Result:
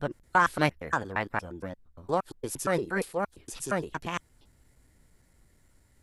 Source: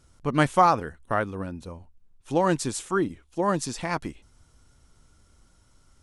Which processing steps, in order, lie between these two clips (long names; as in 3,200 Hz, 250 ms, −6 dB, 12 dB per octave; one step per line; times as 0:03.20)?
slices reordered back to front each 116 ms, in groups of 3
formants moved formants +5 semitones
level −4 dB